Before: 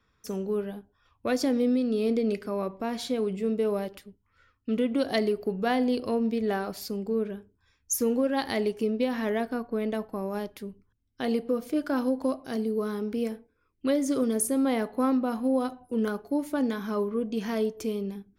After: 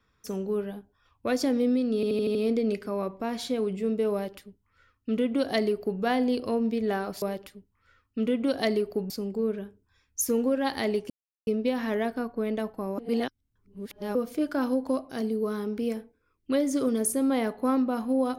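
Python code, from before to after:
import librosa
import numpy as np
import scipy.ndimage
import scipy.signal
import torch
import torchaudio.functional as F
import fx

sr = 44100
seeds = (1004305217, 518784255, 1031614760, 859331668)

y = fx.edit(x, sr, fx.stutter(start_s=1.95, slice_s=0.08, count=6),
    fx.duplicate(start_s=3.73, length_s=1.88, to_s=6.82),
    fx.insert_silence(at_s=8.82, length_s=0.37),
    fx.reverse_span(start_s=10.33, length_s=1.17), tone=tone)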